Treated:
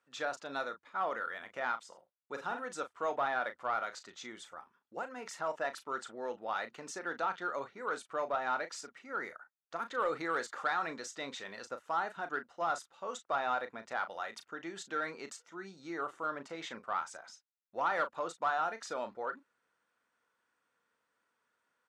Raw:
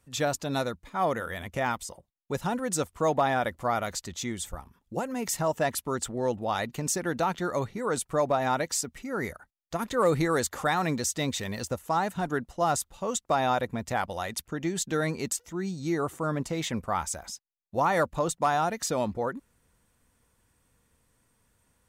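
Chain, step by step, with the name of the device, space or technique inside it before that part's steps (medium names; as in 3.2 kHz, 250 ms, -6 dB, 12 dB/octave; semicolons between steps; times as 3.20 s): intercom (band-pass 400–4700 Hz; peaking EQ 1.4 kHz +9 dB 0.56 oct; saturation -13 dBFS, distortion -22 dB; doubling 36 ms -10.5 dB); 1.88–2.65 s: doubling 47 ms -7.5 dB; trim -9 dB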